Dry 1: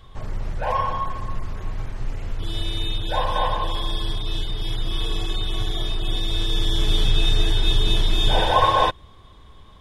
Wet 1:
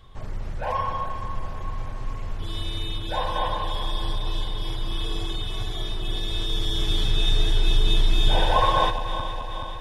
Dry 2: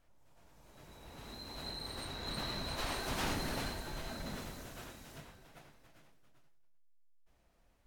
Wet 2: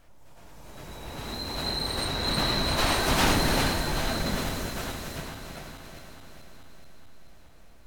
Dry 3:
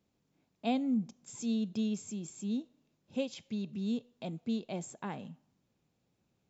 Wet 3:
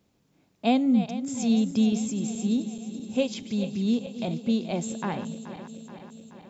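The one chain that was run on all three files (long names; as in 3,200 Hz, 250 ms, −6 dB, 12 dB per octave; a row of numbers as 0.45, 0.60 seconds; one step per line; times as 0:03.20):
feedback delay that plays each chunk backwards 214 ms, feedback 79%, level −12 dB
loudness normalisation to −27 LKFS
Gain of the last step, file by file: −3.5, +13.5, +9.0 decibels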